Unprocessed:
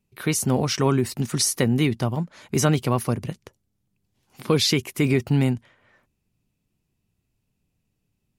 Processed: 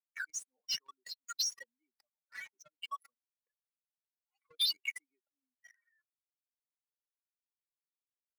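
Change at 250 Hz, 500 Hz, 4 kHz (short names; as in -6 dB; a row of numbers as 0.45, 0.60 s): under -40 dB, under -40 dB, -8.0 dB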